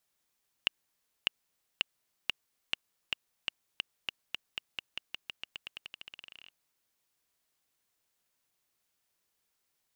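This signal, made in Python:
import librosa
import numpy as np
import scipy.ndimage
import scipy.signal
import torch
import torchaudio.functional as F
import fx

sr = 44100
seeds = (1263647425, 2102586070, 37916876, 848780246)

y = fx.bouncing_ball(sr, first_gap_s=0.6, ratio=0.9, hz=2850.0, decay_ms=11.0, level_db=-9.5)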